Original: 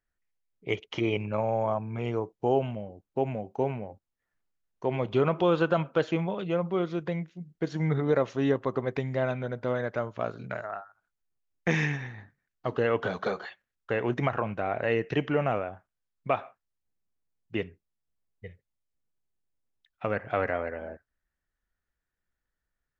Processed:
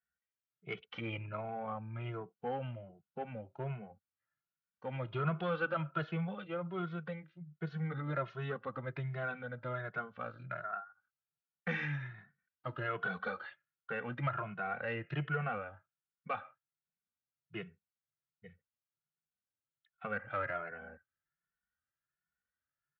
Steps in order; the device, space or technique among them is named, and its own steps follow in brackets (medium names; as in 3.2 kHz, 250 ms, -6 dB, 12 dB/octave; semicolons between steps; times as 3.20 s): barber-pole flanger into a guitar amplifier (endless flanger 2.3 ms +1.3 Hz; saturation -19 dBFS, distortion -21 dB; cabinet simulation 94–3900 Hz, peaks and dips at 150 Hz +6 dB, 280 Hz -9 dB, 410 Hz -7 dB, 630 Hz -3 dB, 940 Hz -4 dB, 1.4 kHz +10 dB); trim -5.5 dB